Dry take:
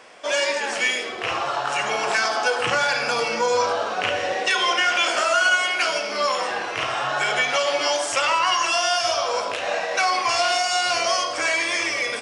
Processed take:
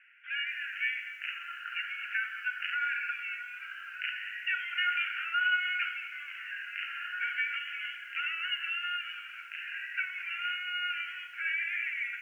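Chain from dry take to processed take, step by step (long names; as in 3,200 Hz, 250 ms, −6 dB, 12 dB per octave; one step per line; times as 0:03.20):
Chebyshev band-pass filter 1,400–2,900 Hz, order 5
feedback echo at a low word length 223 ms, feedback 35%, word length 8 bits, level −14 dB
level −8 dB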